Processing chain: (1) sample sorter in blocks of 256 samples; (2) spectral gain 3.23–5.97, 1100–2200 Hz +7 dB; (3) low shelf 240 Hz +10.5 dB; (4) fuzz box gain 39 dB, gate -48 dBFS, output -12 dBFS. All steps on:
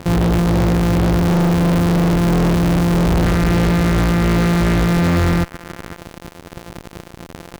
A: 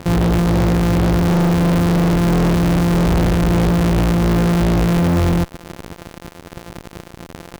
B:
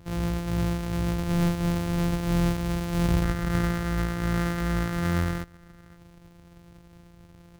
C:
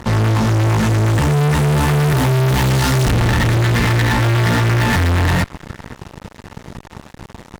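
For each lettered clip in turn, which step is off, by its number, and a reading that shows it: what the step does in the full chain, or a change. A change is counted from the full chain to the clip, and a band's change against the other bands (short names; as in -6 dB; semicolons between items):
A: 2, momentary loudness spread change +1 LU; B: 4, distortion -4 dB; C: 1, 250 Hz band -8.0 dB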